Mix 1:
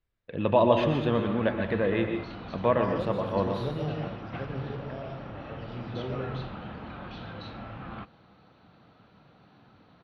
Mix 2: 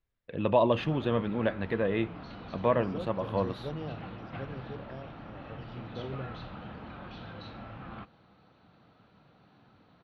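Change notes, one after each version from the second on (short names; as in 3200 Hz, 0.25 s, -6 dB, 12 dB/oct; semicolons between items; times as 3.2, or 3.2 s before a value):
second voice: remove HPF 86 Hz 24 dB/oct; background -3.5 dB; reverb: off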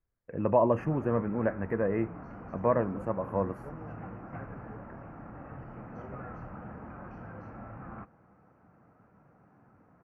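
second voice -8.5 dB; master: add Butterworth band-stop 3700 Hz, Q 0.66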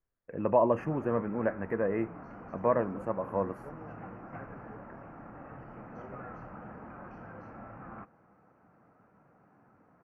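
master: add bell 66 Hz -7.5 dB 2.6 oct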